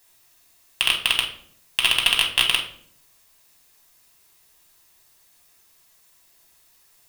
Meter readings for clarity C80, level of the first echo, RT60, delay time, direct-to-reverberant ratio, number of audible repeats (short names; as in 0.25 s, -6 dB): 12.0 dB, none, 0.60 s, none, -1.0 dB, none